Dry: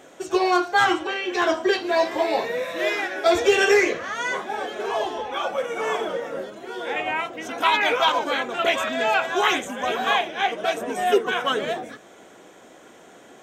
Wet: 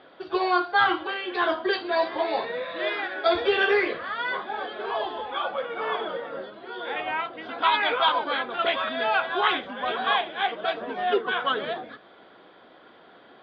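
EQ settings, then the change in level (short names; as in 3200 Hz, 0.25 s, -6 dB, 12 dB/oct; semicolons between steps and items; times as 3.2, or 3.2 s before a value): rippled Chebyshev low-pass 4800 Hz, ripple 6 dB; 0.0 dB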